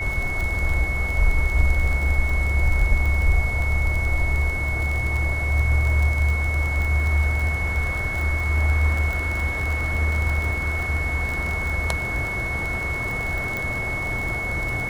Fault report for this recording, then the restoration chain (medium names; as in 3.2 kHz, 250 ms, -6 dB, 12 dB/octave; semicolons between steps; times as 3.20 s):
crackle 29 per s -24 dBFS
whine 2.2 kHz -26 dBFS
13.57 s: pop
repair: de-click; band-stop 2.2 kHz, Q 30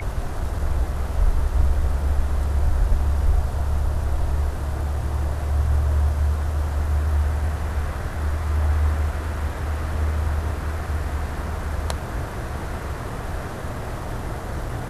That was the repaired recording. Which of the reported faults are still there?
nothing left